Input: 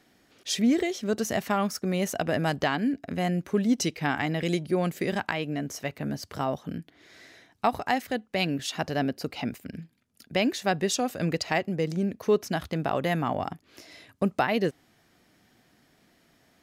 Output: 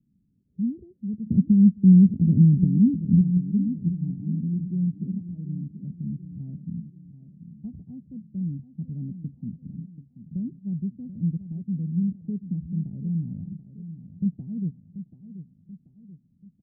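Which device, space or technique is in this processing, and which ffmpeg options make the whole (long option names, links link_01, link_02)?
the neighbour's flat through the wall: -filter_complex "[0:a]asettb=1/sr,asplit=3[link_01][link_02][link_03];[link_01]atrim=end=1.264[link_04];[link_02]atrim=start=1.26:end=3.21,asetpts=PTS-STARTPTS,afade=type=in:duration=0.004:curve=qsin,afade=type=out:start_time=1.946:duration=0.004:curve=qsin,lowshelf=frequency=570:width_type=q:width=1.5:gain=11.5[link_05];[link_03]atrim=start=3.206[link_06];[link_04][link_05]acrossfade=duration=0.004:curve1=hsin:curve2=qsin[link_07];[link_07][link_06]acrossfade=duration=0.004:curve1=qsin:curve2=hsin,lowpass=frequency=190:width=0.5412,lowpass=frequency=190:width=1.3066,equalizer=frequency=190:width_type=o:width=0.76:gain=7,aecho=1:1:734|1468|2202|2936|3670:0.251|0.116|0.0532|0.0244|0.0112"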